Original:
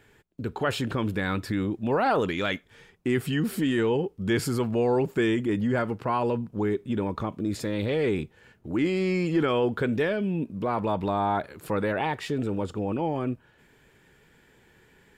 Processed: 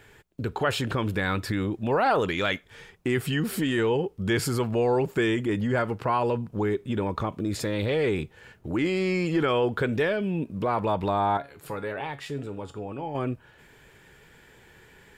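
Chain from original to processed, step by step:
parametric band 240 Hz −5 dB 1.2 octaves
in parallel at 0 dB: downward compressor, threshold −35 dBFS, peak gain reduction 13.5 dB
0:11.37–0:13.15: on the sum: tuned comb filter 140 Hz, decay 0.28 s, harmonics all, mix 70%

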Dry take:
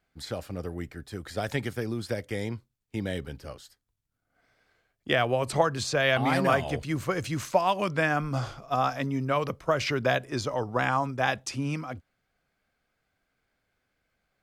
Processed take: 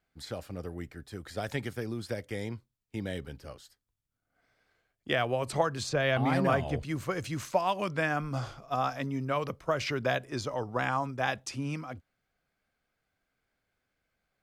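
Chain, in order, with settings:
0:05.89–0:06.85: spectral tilt −1.5 dB per octave
level −4 dB

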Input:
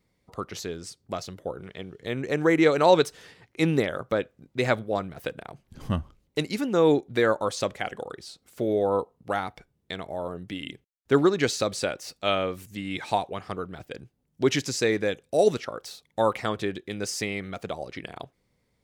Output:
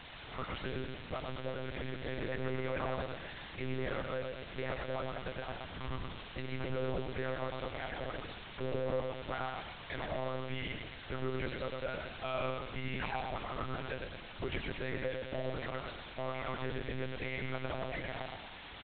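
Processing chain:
low-pass filter 2,200 Hz
low-shelf EQ 470 Hz −8.5 dB
mains-hum notches 50/100/150/200 Hz
comb filter 5.7 ms, depth 80%
downward compressor 2.5 to 1, threshold −38 dBFS, peak gain reduction 17 dB
brickwall limiter −31 dBFS, peak gain reduction 10.5 dB
bit-depth reduction 8 bits, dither triangular
soft clipping −37.5 dBFS, distortion −13 dB
repeating echo 111 ms, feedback 45%, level −4 dB
one-pitch LPC vocoder at 8 kHz 130 Hz
level +5.5 dB

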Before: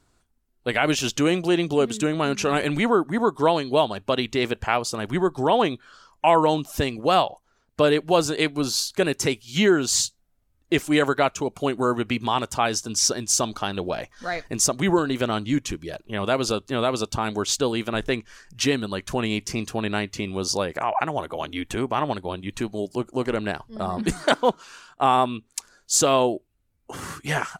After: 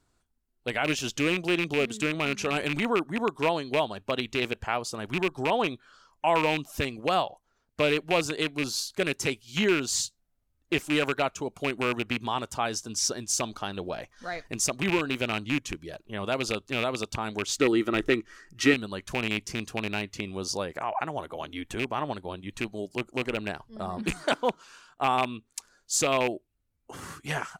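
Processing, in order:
loose part that buzzes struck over −25 dBFS, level −11 dBFS
0:17.55–0:18.74: hollow resonant body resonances 330/1,300/1,900 Hz, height 13 dB, ringing for 30 ms
level −6.5 dB

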